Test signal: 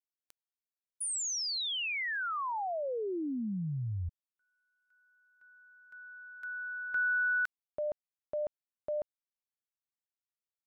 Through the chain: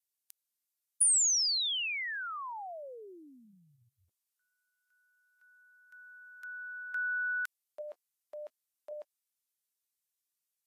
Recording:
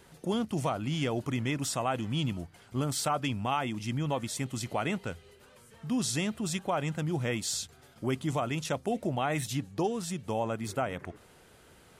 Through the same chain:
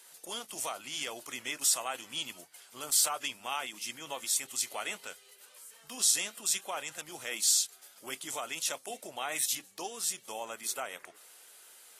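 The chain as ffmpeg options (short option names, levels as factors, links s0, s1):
-af "crystalizer=i=6:c=0,highpass=560,volume=0.398" -ar 32000 -c:a aac -b:a 48k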